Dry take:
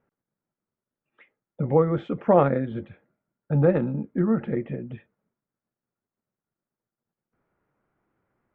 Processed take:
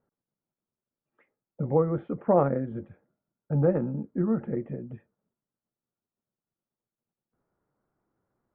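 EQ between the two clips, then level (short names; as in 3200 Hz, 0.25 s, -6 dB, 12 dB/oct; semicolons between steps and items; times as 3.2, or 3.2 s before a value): LPF 1300 Hz 12 dB/oct; -3.5 dB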